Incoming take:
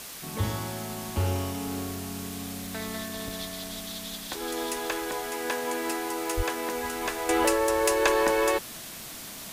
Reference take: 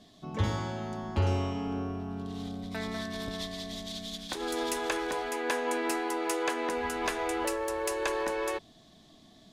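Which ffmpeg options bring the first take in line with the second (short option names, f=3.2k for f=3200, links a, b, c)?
-filter_complex "[0:a]adeclick=t=4,asplit=3[a][b][c];[a]afade=t=out:st=6.36:d=0.02[d];[b]highpass=f=140:w=0.5412,highpass=f=140:w=1.3066,afade=t=in:st=6.36:d=0.02,afade=t=out:st=6.48:d=0.02[e];[c]afade=t=in:st=6.48:d=0.02[f];[d][e][f]amix=inputs=3:normalize=0,afwtdn=0.01,asetnsamples=n=441:p=0,asendcmd='7.29 volume volume -8dB',volume=0dB"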